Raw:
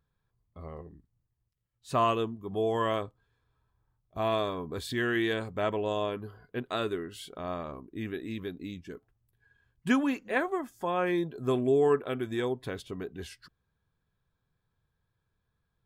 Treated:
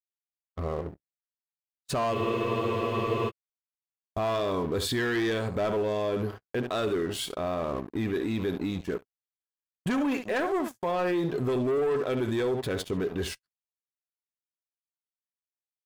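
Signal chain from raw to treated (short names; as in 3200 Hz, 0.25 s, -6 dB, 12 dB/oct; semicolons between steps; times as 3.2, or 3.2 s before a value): early reflections 10 ms -15.5 dB, 71 ms -14.5 dB; sample leveller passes 3; gate -38 dBFS, range -43 dB; dynamic EQ 540 Hz, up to +4 dB, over -36 dBFS, Q 1.1; limiter -22 dBFS, peak gain reduction 11.5 dB; spectral freeze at 2.16, 1.12 s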